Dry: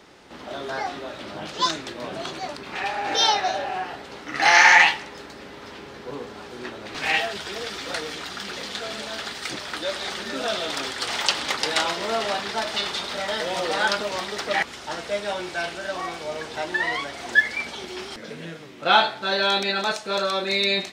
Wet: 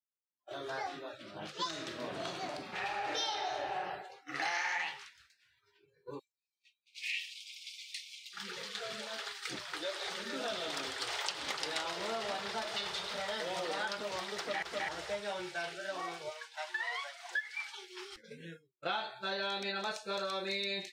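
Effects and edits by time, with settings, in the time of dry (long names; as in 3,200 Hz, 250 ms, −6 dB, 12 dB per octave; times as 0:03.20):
0:01.68–0:03.81: thrown reverb, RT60 1.4 s, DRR 3 dB
0:04.98–0:05.59: ceiling on every frequency bin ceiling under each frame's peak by 13 dB
0:06.19–0:08.33: elliptic high-pass filter 2,300 Hz, stop band 80 dB
0:09.42–0:13.28: echo with a time of its own for lows and highs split 750 Hz, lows 153 ms, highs 295 ms, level −14 dB
0:14.39–0:14.89: delay throw 260 ms, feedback 15%, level −1.5 dB
0:16.29–0:17.99: high-pass filter 860 Hz → 380 Hz
0:19.30–0:19.88: high-shelf EQ 6,800 Hz −4.5 dB
whole clip: noise reduction from a noise print of the clip's start 26 dB; downward expander −33 dBFS; downward compressor 6 to 1, threshold −24 dBFS; level −9 dB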